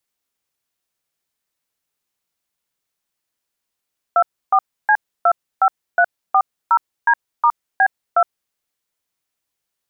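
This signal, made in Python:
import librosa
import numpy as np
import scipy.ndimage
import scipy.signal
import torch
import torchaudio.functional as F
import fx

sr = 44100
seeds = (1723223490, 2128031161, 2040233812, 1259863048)

y = fx.dtmf(sr, digits='24C25340D*B2', tone_ms=65, gap_ms=299, level_db=-12.5)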